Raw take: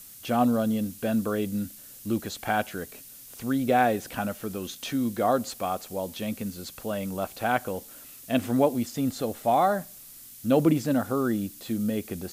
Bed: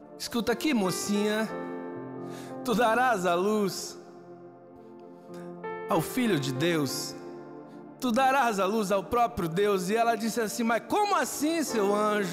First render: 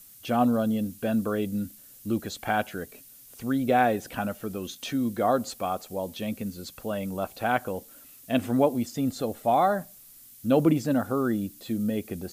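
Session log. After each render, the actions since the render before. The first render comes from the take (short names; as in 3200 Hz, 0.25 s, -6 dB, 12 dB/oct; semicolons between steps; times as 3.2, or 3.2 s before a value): denoiser 6 dB, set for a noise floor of -47 dBFS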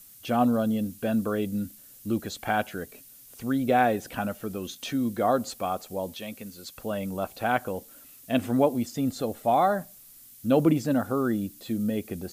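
6.14–6.76 low shelf 420 Hz -10.5 dB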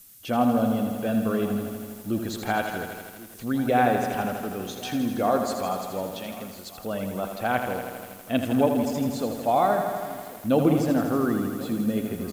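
echo 1.086 s -19 dB; lo-fi delay 81 ms, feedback 80%, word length 8-bit, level -7 dB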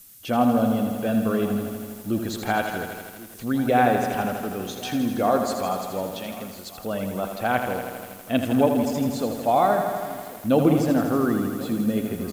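gain +2 dB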